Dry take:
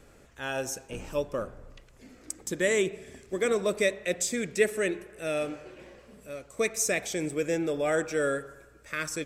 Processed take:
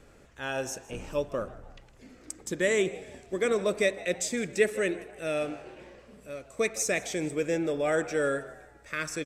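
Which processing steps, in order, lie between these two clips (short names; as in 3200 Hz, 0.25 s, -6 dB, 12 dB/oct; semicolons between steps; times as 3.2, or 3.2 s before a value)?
high shelf 11000 Hz -9.5 dB; frequency-shifting echo 0.159 s, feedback 40%, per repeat +96 Hz, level -20 dB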